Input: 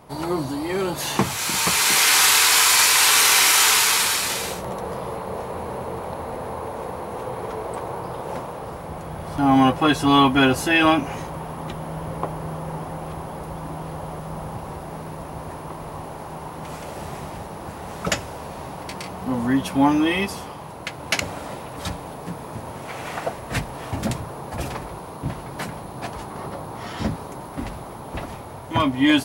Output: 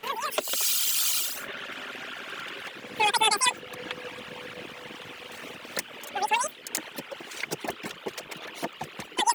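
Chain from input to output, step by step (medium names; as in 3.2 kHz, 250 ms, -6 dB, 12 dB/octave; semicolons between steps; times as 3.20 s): flange 1.2 Hz, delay 1.8 ms, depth 8.8 ms, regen +75%; reverb removal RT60 1.7 s; wide varispeed 3.13×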